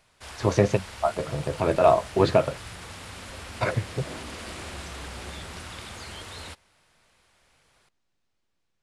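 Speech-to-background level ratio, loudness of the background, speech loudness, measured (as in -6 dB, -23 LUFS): 15.0 dB, -39.5 LUFS, -24.5 LUFS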